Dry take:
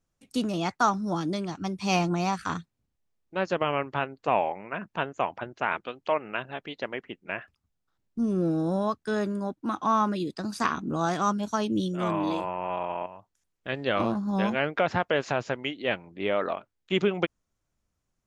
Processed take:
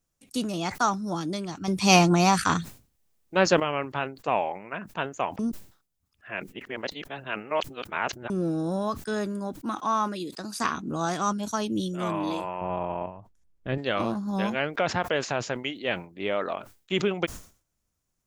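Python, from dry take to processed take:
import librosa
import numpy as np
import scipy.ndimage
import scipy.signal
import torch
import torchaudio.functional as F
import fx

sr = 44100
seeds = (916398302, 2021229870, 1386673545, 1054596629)

y = fx.highpass(x, sr, hz=260.0, slope=6, at=(9.75, 10.6))
y = fx.tilt_eq(y, sr, slope=-3.5, at=(12.61, 13.78))
y = fx.edit(y, sr, fx.clip_gain(start_s=1.68, length_s=1.92, db=8.0),
    fx.reverse_span(start_s=5.39, length_s=2.91), tone=tone)
y = fx.high_shelf(y, sr, hz=6100.0, db=11.0)
y = fx.sustainer(y, sr, db_per_s=140.0)
y = F.gain(torch.from_numpy(y), -1.5).numpy()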